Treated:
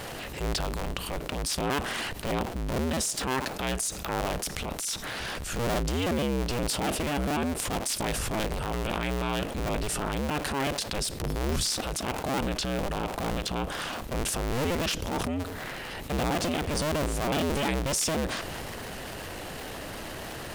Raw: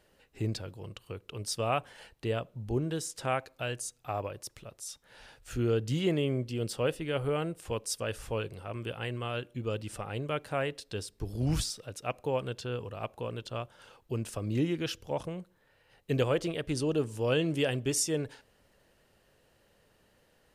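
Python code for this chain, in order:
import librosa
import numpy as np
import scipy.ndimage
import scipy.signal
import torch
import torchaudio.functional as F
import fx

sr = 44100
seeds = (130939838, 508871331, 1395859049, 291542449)

y = fx.cycle_switch(x, sr, every=2, mode='inverted')
y = fx.transient(y, sr, attack_db=-9, sustain_db=6)
y = fx.env_flatten(y, sr, amount_pct=70)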